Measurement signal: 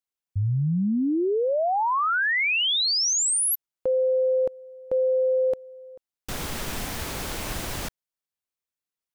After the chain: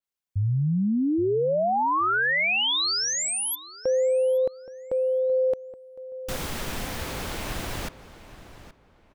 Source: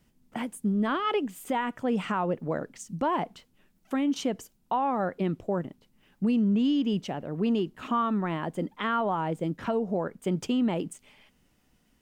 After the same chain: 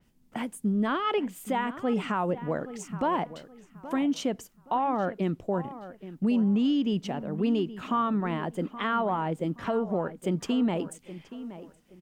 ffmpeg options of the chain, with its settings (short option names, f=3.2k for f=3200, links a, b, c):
-filter_complex "[0:a]asplit=2[a][b];[b]adelay=823,lowpass=f=2.5k:p=1,volume=-14dB,asplit=2[c][d];[d]adelay=823,lowpass=f=2.5k:p=1,volume=0.28,asplit=2[e][f];[f]adelay=823,lowpass=f=2.5k:p=1,volume=0.28[g];[a][c][e][g]amix=inputs=4:normalize=0,adynamicequalizer=threshold=0.00708:dfrequency=4700:dqfactor=0.7:tfrequency=4700:tqfactor=0.7:attack=5:release=100:ratio=0.375:range=2.5:mode=cutabove:tftype=highshelf"